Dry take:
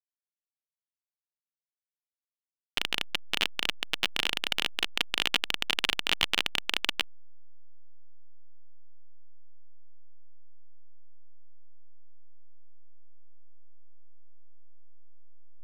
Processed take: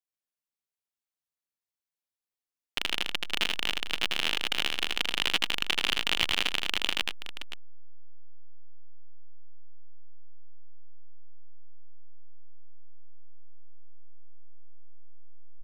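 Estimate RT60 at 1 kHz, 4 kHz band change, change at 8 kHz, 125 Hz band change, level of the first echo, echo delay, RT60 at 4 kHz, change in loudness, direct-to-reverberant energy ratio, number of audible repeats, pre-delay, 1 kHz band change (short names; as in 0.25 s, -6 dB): none, +0.5 dB, +0.5 dB, +2.0 dB, -3.0 dB, 80 ms, none, +0.5 dB, none, 2, none, +0.5 dB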